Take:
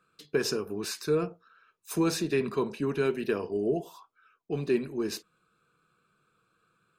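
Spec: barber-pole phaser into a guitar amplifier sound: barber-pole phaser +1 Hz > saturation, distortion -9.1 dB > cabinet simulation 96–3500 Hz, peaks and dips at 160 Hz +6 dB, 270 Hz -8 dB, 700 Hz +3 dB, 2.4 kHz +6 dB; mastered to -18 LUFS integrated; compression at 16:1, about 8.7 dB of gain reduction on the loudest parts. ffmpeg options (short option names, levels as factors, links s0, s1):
-filter_complex "[0:a]acompressor=threshold=0.0316:ratio=16,asplit=2[s0][s1];[s1]afreqshift=1[s2];[s0][s2]amix=inputs=2:normalize=1,asoftclip=threshold=0.0126,highpass=96,equalizer=f=160:t=q:w=4:g=6,equalizer=f=270:t=q:w=4:g=-8,equalizer=f=700:t=q:w=4:g=3,equalizer=f=2400:t=q:w=4:g=6,lowpass=f=3500:w=0.5412,lowpass=f=3500:w=1.3066,volume=22.4"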